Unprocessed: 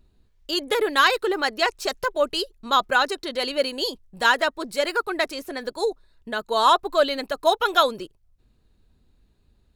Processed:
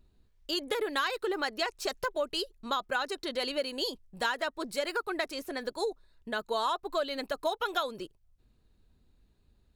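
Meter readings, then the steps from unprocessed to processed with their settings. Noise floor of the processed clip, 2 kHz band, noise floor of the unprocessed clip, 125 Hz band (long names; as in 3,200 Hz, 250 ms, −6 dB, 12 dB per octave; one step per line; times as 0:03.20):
−68 dBFS, −10.5 dB, −63 dBFS, can't be measured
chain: downward compressor 5 to 1, threshold −23 dBFS, peak gain reduction 10.5 dB
level −4.5 dB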